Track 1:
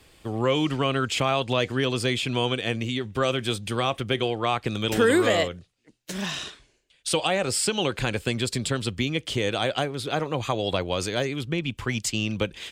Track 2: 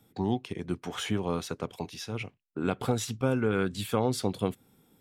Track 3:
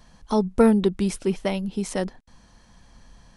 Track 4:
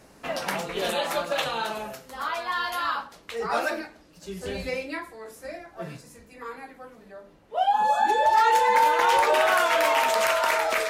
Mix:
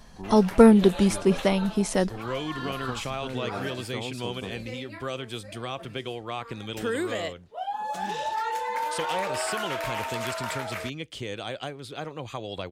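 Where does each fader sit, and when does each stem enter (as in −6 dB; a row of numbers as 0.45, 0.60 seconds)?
−9.0, −9.5, +2.5, −10.0 decibels; 1.85, 0.00, 0.00, 0.00 seconds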